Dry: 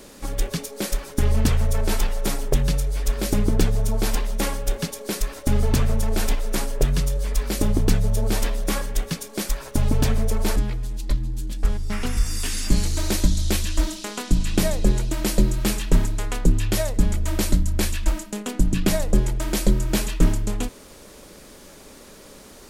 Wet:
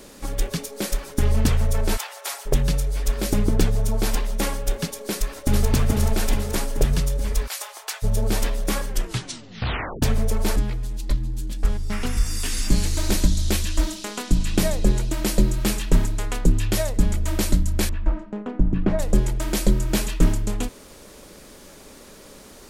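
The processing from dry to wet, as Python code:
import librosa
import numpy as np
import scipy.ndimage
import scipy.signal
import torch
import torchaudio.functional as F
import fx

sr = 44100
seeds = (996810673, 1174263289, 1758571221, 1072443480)

y = fx.highpass(x, sr, hz=690.0, slope=24, at=(1.96, 2.45), fade=0.02)
y = fx.echo_throw(y, sr, start_s=5.1, length_s=0.6, ms=430, feedback_pct=60, wet_db=-2.0)
y = fx.cheby2_highpass(y, sr, hz=230.0, order=4, stop_db=60, at=(7.46, 8.02), fade=0.02)
y = fx.echo_throw(y, sr, start_s=12.11, length_s=0.74, ms=390, feedback_pct=30, wet_db=-9.5)
y = fx.lowpass(y, sr, hz=1300.0, slope=12, at=(17.89, 18.99))
y = fx.edit(y, sr, fx.tape_stop(start_s=8.87, length_s=1.15), tone=tone)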